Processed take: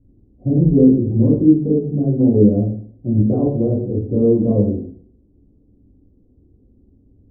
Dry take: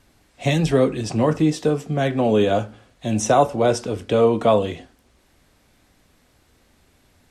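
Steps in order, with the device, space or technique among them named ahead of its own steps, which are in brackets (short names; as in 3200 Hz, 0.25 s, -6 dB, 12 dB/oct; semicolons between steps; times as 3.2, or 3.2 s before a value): next room (LPF 370 Hz 24 dB/oct; reverb RT60 0.50 s, pre-delay 8 ms, DRR -7.5 dB)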